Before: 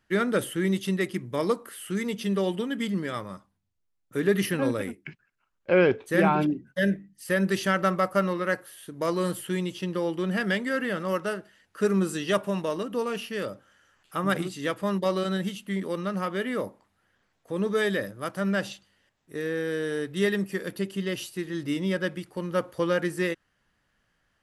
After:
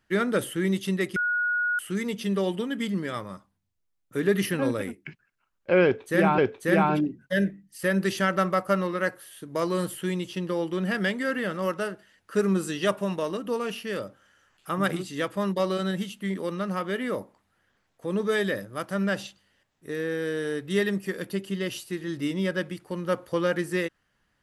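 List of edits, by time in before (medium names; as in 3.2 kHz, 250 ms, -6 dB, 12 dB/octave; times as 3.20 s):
1.16–1.79 s: bleep 1.45 kHz -22.5 dBFS
5.84–6.38 s: loop, 2 plays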